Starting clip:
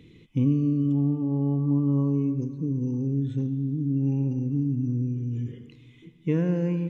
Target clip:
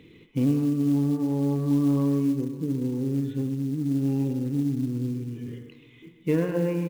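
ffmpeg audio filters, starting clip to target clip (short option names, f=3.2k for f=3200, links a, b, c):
-filter_complex "[0:a]bandreject=f=59.23:t=h:w=4,bandreject=f=118.46:t=h:w=4,bandreject=f=177.69:t=h:w=4,bandreject=f=236.92:t=h:w=4,bandreject=f=296.15:t=h:w=4,bandreject=f=355.38:t=h:w=4,bandreject=f=414.61:t=h:w=4,bandreject=f=473.84:t=h:w=4,bandreject=f=533.07:t=h:w=4,bandreject=f=592.3:t=h:w=4,bandreject=f=651.53:t=h:w=4,bandreject=f=710.76:t=h:w=4,bandreject=f=769.99:t=h:w=4,bandreject=f=829.22:t=h:w=4,bandreject=f=888.45:t=h:w=4,bandreject=f=947.68:t=h:w=4,bandreject=f=1.00691k:t=h:w=4,bandreject=f=1.06614k:t=h:w=4,bandreject=f=1.12537k:t=h:w=4,bandreject=f=1.1846k:t=h:w=4,bandreject=f=1.24383k:t=h:w=4,bandreject=f=1.30306k:t=h:w=4,bandreject=f=1.36229k:t=h:w=4,bandreject=f=1.42152k:t=h:w=4,bandreject=f=1.48075k:t=h:w=4,bandreject=f=1.53998k:t=h:w=4,bandreject=f=1.59921k:t=h:w=4,bandreject=f=1.65844k:t=h:w=4,bandreject=f=1.71767k:t=h:w=4,bandreject=f=1.7769k:t=h:w=4,bandreject=f=1.83613k:t=h:w=4,bandreject=f=1.89536k:t=h:w=4,bandreject=f=1.95459k:t=h:w=4,bandreject=f=2.01382k:t=h:w=4,bandreject=f=2.07305k:t=h:w=4,bandreject=f=2.13228k:t=h:w=4,bandreject=f=2.19151k:t=h:w=4,bandreject=f=2.25074k:t=h:w=4,asplit=2[a][b];[b]adelay=130,highpass=300,lowpass=3.4k,asoftclip=type=hard:threshold=-23.5dB,volume=-10dB[c];[a][c]amix=inputs=2:normalize=0,acontrast=81,bass=f=250:g=-9,treble=f=4k:g=-11,acrusher=bits=7:mode=log:mix=0:aa=0.000001,volume=-1.5dB"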